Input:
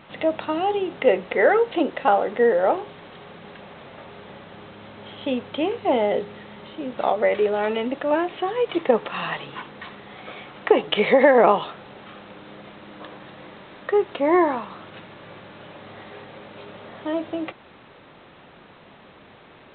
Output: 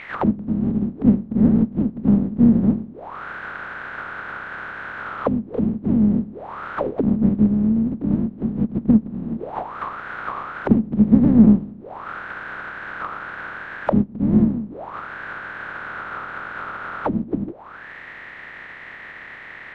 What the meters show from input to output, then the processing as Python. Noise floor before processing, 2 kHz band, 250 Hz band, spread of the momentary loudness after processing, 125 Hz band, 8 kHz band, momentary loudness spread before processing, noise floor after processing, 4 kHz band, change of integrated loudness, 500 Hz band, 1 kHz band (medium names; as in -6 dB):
-49 dBFS, -0.5 dB, +11.5 dB, 19 LU, +19.0 dB, no reading, 22 LU, -39 dBFS, under -10 dB, +0.5 dB, -10.0 dB, -5.5 dB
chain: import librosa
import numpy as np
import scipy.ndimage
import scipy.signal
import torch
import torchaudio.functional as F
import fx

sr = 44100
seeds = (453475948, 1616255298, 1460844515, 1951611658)

y = fx.spec_flatten(x, sr, power=0.16)
y = fx.envelope_lowpass(y, sr, base_hz=220.0, top_hz=2300.0, q=7.6, full_db=-24.0, direction='down')
y = y * librosa.db_to_amplitude(5.5)